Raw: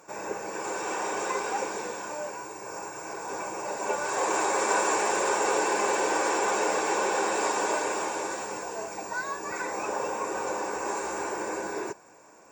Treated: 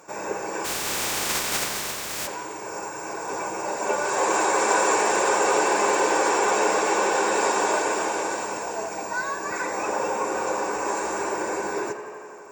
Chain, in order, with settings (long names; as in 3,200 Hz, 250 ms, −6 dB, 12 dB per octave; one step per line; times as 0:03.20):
0:00.64–0:02.26: compressing power law on the bin magnitudes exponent 0.2
tape delay 87 ms, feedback 88%, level −11 dB, low-pass 4,800 Hz
level +4 dB